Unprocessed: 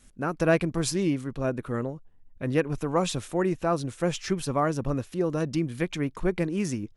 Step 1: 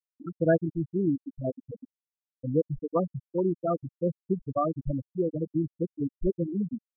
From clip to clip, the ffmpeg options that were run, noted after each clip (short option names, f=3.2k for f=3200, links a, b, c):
-af "afftfilt=real='re*gte(hypot(re,im),0.282)':imag='im*gte(hypot(re,im),0.282)':win_size=1024:overlap=0.75"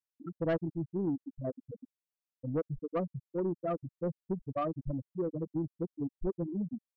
-af "asoftclip=type=tanh:threshold=-20dB,volume=-4.5dB"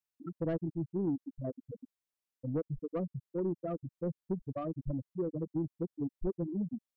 -filter_complex "[0:a]acrossover=split=480[a][b];[b]acompressor=threshold=-44dB:ratio=3[c];[a][c]amix=inputs=2:normalize=0"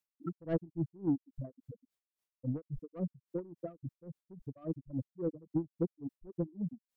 -af "aeval=exprs='val(0)*pow(10,-25*(0.5-0.5*cos(2*PI*3.6*n/s))/20)':c=same,volume=4dB"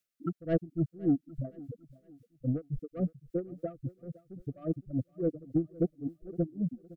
-af "asoftclip=type=tanh:threshold=-21.5dB,asuperstop=centerf=940:order=12:qfactor=2.3,aecho=1:1:512|1024|1536:0.0944|0.0349|0.0129,volume=5.5dB"